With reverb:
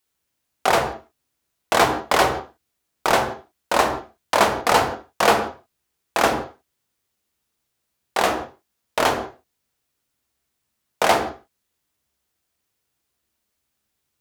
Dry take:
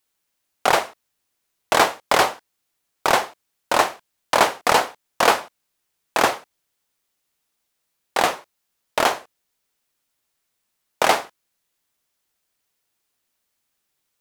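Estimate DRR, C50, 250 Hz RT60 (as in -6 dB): 5.0 dB, 8.5 dB, n/a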